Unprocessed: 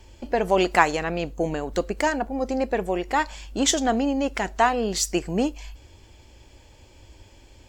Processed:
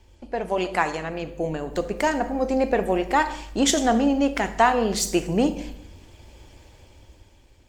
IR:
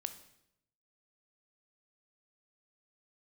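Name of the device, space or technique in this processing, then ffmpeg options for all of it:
speakerphone in a meeting room: -filter_complex "[1:a]atrim=start_sample=2205[link_01];[0:a][link_01]afir=irnorm=-1:irlink=0,dynaudnorm=framelen=260:gausssize=9:maxgain=11.5dB,volume=-3dB" -ar 48000 -c:a libopus -b:a 32k

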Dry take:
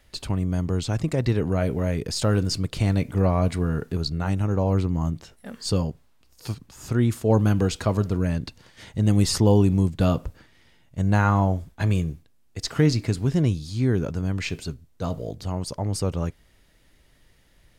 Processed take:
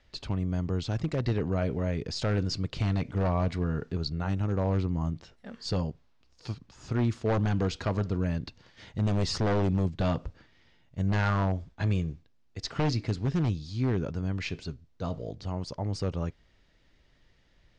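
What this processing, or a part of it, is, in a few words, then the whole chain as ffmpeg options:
synthesiser wavefolder: -af "aeval=exprs='0.188*(abs(mod(val(0)/0.188+3,4)-2)-1)':channel_layout=same,lowpass=frequency=5900:width=0.5412,lowpass=frequency=5900:width=1.3066,volume=-5dB"

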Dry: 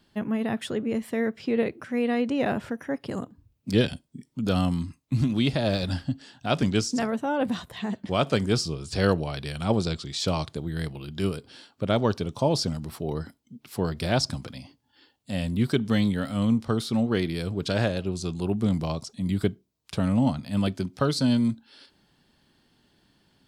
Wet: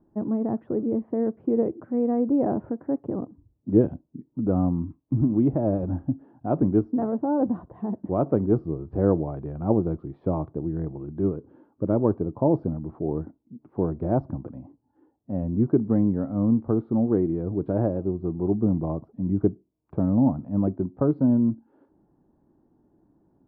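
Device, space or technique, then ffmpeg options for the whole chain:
under water: -filter_complex "[0:a]lowpass=frequency=950:width=0.5412,lowpass=frequency=950:width=1.3066,equalizer=frequency=320:width_type=o:width=0.45:gain=9,asettb=1/sr,asplit=3[link_01][link_02][link_03];[link_01]atrim=end=11.364[link_04];[link_02]atrim=start=11.36:end=12.05,asetpts=PTS-STARTPTS,afade=type=in:duration=0.004:curve=qsin,afade=type=out:start_time=0.686:duration=0.004:curve=qsin,equalizer=frequency=720:width_type=o:width=0.2:gain=-9.5[link_05];[link_03]atrim=start=12.046[link_06];[link_04][link_05]acrossfade=duration=0.004:curve1=hsin:curve2=qsin[link_07];[link_07][link_06]acrossfade=duration=0.004:curve1=qsin:curve2=hsin"

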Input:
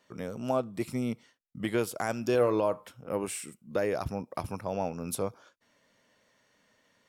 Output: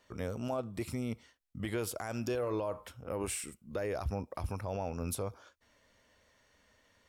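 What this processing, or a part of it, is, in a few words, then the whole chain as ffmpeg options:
car stereo with a boomy subwoofer: -af "lowshelf=frequency=100:width_type=q:width=1.5:gain=13,alimiter=level_in=2.5dB:limit=-24dB:level=0:latency=1:release=51,volume=-2.5dB"

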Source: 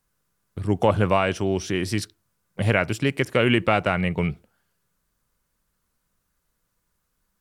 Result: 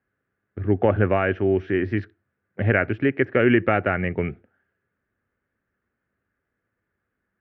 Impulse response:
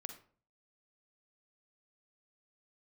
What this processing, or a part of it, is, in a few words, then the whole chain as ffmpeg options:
bass cabinet: -af "highpass=88,equalizer=frequency=96:width_type=q:width=4:gain=5,equalizer=frequency=160:width_type=q:width=4:gain=-8,equalizer=frequency=260:width_type=q:width=4:gain=4,equalizer=frequency=380:width_type=q:width=4:gain=5,equalizer=frequency=1000:width_type=q:width=4:gain=-10,equalizer=frequency=1700:width_type=q:width=4:gain=7,lowpass=frequency=2200:width=0.5412,lowpass=frequency=2200:width=1.3066"

